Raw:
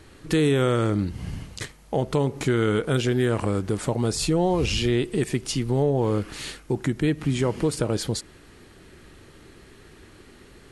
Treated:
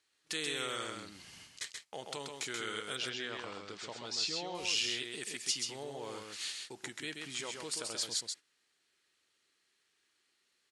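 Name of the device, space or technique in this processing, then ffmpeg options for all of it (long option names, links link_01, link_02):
piezo pickup straight into a mixer: -filter_complex "[0:a]asettb=1/sr,asplit=3[link_01][link_02][link_03];[link_01]atrim=end=2.964[link_04];[link_02]atrim=start=2.96:end=4.55,asetpts=PTS-STARTPTS,afade=type=in:duration=0.004:curve=qsin,afade=type=out:start_time=1.586:duration=0.004:curve=qsin,lowpass=frequency=5600:width=0.5412,lowpass=frequency=5600:width=1.3066[link_05];[link_03]atrim=start=4.546[link_06];[link_04][link_05]acrossfade=duration=0.004:curve1=hsin:curve2=qsin[link_07];[link_07][link_06]acrossfade=duration=0.004:curve1=qsin:curve2=hsin,agate=range=-16dB:threshold=-36dB:ratio=16:detection=peak,lowpass=6000,aderivative,aecho=1:1:132:0.596,volume=2.5dB"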